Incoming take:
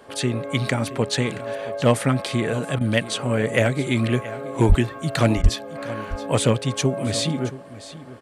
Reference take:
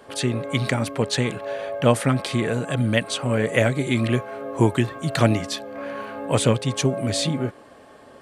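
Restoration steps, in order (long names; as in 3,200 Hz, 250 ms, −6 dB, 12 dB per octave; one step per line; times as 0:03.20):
clipped peaks rebuilt −6.5 dBFS
0:04.68–0:04.80: high-pass filter 140 Hz 24 dB per octave
0:05.42–0:05.54: high-pass filter 140 Hz 24 dB per octave
repair the gap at 0:02.79/0:05.42, 18 ms
echo removal 674 ms −16 dB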